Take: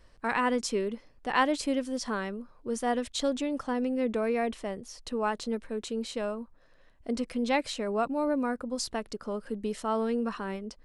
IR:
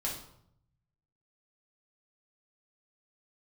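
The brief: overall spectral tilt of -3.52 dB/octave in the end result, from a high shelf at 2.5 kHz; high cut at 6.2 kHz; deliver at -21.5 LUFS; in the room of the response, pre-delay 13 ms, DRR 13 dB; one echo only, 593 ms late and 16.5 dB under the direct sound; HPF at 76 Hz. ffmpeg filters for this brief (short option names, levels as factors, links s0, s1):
-filter_complex "[0:a]highpass=76,lowpass=6200,highshelf=f=2500:g=5.5,aecho=1:1:593:0.15,asplit=2[s0][s1];[1:a]atrim=start_sample=2205,adelay=13[s2];[s1][s2]afir=irnorm=-1:irlink=0,volume=0.15[s3];[s0][s3]amix=inputs=2:normalize=0,volume=2.82"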